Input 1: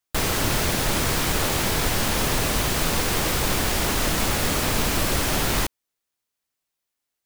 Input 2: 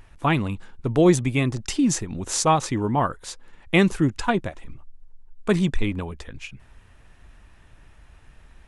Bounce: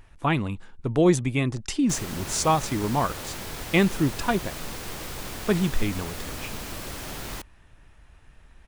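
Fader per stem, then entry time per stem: -13.0 dB, -2.5 dB; 1.75 s, 0.00 s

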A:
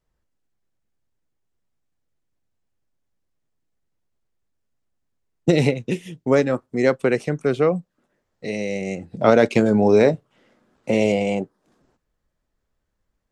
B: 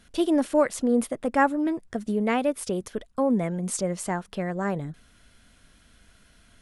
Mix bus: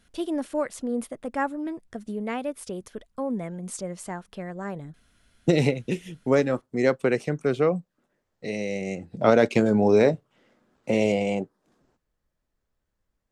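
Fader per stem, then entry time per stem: -3.5 dB, -6.0 dB; 0.00 s, 0.00 s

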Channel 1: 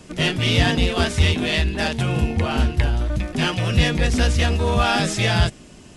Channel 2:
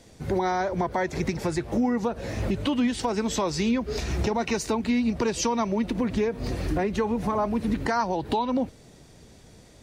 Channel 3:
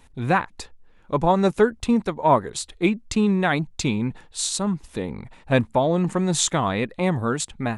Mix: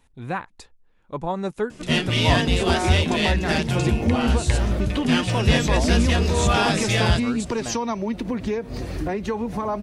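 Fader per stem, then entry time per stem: -1.5 dB, -0.5 dB, -8.0 dB; 1.70 s, 2.30 s, 0.00 s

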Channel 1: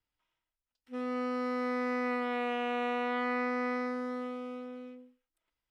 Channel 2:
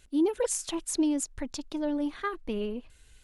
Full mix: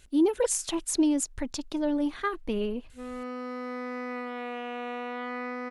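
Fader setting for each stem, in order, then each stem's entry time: -3.0 dB, +2.5 dB; 2.05 s, 0.00 s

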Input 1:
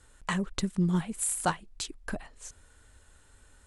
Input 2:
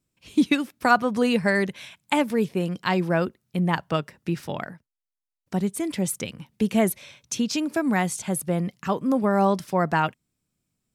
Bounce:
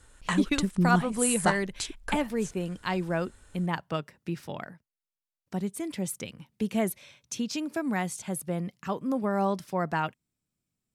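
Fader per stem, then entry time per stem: +2.0 dB, -6.5 dB; 0.00 s, 0.00 s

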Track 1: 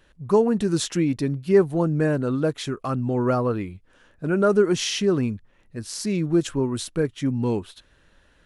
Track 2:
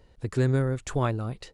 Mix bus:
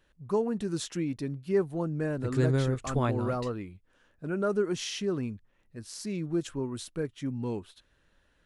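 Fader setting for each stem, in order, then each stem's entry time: -9.5 dB, -2.5 dB; 0.00 s, 2.00 s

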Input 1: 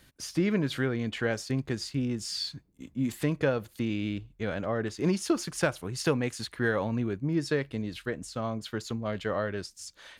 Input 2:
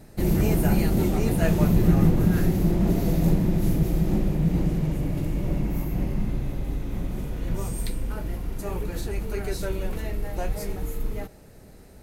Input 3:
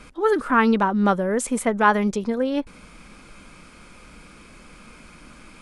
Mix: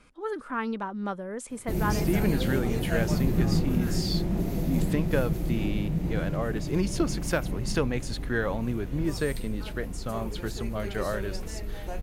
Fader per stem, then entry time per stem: -0.5 dB, -6.0 dB, -13.0 dB; 1.70 s, 1.50 s, 0.00 s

